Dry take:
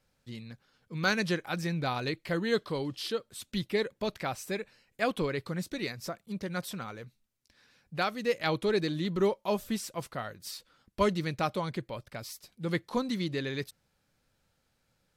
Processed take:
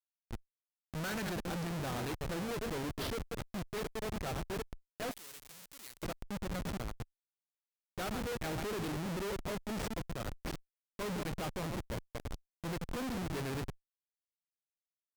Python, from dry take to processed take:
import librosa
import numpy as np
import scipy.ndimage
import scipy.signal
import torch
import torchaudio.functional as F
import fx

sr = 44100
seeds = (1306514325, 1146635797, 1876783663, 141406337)

y = fx.reverse_delay(x, sr, ms=108, wet_db=-8.5)
y = fx.schmitt(y, sr, flips_db=-34.0)
y = fx.pre_emphasis(y, sr, coefficient=0.9, at=(5.11, 6.03))
y = fx.cheby_harmonics(y, sr, harmonics=(7,), levels_db=(-21,), full_scale_db=-27.0)
y = y * librosa.db_to_amplitude(-4.5)